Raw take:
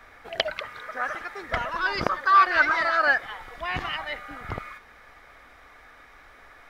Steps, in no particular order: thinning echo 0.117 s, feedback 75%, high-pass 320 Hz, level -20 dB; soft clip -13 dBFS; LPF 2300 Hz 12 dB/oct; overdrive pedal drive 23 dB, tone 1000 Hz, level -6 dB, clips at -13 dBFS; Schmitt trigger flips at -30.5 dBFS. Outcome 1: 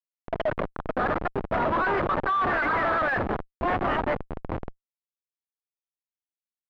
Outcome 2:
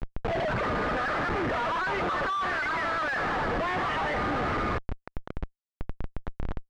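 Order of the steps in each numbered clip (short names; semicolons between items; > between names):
thinning echo > Schmitt trigger > overdrive pedal > LPF > soft clip; thinning echo > overdrive pedal > soft clip > Schmitt trigger > LPF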